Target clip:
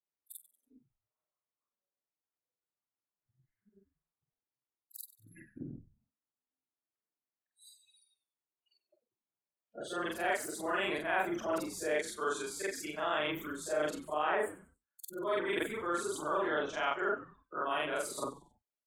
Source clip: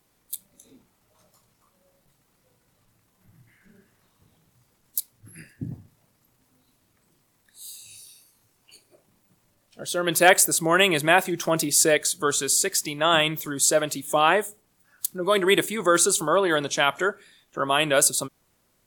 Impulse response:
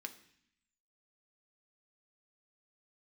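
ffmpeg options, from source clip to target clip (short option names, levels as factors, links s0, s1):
-filter_complex "[0:a]afftfilt=real='re':imag='-im':win_size=4096:overlap=0.75,afftdn=nr=34:nf=-44,areverse,acompressor=threshold=0.0158:ratio=5,areverse,acrossover=split=290 2600:gain=0.178 1 0.2[s0][s1][s2];[s0][s1][s2]amix=inputs=3:normalize=0,bandreject=f=530:w=12,asplit=4[s3][s4][s5][s6];[s4]adelay=94,afreqshift=-120,volume=0.15[s7];[s5]adelay=188,afreqshift=-240,volume=0.0495[s8];[s6]adelay=282,afreqshift=-360,volume=0.0162[s9];[s3][s7][s8][s9]amix=inputs=4:normalize=0,tremolo=f=210:d=0.182,volume=2.37"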